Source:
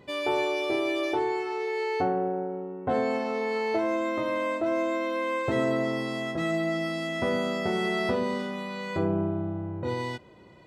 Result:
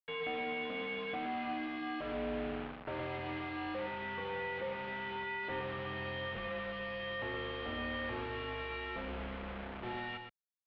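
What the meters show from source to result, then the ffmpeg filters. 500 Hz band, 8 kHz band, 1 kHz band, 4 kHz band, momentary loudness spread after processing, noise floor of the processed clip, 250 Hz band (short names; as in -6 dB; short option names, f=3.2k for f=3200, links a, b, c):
-13.5 dB, under -30 dB, -9.5 dB, -7.0 dB, 4 LU, -49 dBFS, -13.0 dB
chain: -af "equalizer=f=290:t=o:w=1.9:g=-11.5,aecho=1:1:4.8:0.32,acompressor=threshold=-33dB:ratio=6,aresample=11025,asoftclip=type=tanh:threshold=-38.5dB,aresample=44100,acrusher=bits=6:mix=0:aa=0.000001,aecho=1:1:119:0.473,highpass=f=190:t=q:w=0.5412,highpass=f=190:t=q:w=1.307,lowpass=f=3.3k:t=q:w=0.5176,lowpass=f=3.3k:t=q:w=0.7071,lowpass=f=3.3k:t=q:w=1.932,afreqshift=-130"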